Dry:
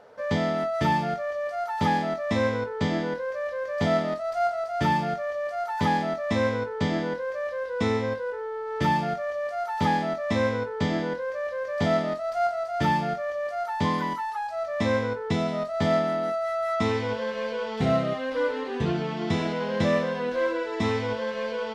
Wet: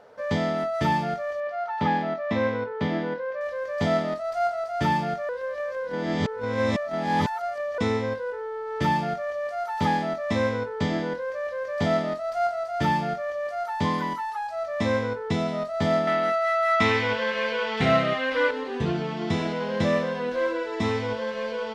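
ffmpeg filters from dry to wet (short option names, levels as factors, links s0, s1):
-filter_complex "[0:a]asettb=1/sr,asplit=3[s0][s1][s2];[s0]atrim=end=1.404[s3];[s1]atrim=start=1.4:end=3.41,asetpts=PTS-STARTPTS,afade=t=in:d=0.004:c=qsin,afade=t=out:st=2.006:d=0.004:c=qsin,highpass=110,lowpass=3400[s4];[s2]atrim=start=3.406[s5];[s3][s4]acrossfade=d=0.004:c1=hsin:c2=qsin[s6];[s6][s5]acrossfade=d=0.004:c1=qsin:c2=hsin,asettb=1/sr,asplit=3[s7][s8][s9];[s7]atrim=end=16.074[s10];[s8]atrim=start=16.07:end=18.51,asetpts=PTS-STARTPTS,afade=t=in:d=0.004:c=qsin,afade=t=out:st=2.436:d=0.004:c=qsin,equalizer=f=2200:w=0.67:g=11[s11];[s9]atrim=start=18.506[s12];[s10][s11]acrossfade=d=0.004:c1=hsin:c2=qsin[s13];[s13][s12]acrossfade=d=0.004:c1=qsin:c2=hsin,asplit=3[s14][s15][s16];[s14]atrim=end=5.292[s17];[s15]atrim=start=5.288:end=7.782,asetpts=PTS-STARTPTS,areverse[s18];[s16]atrim=start=7.778[s19];[s17][s18]acrossfade=d=0.004:c1=hsin:c2=hsin[s20];[s20][s19]acrossfade=d=0.004:c1=hsin:c2=hsin"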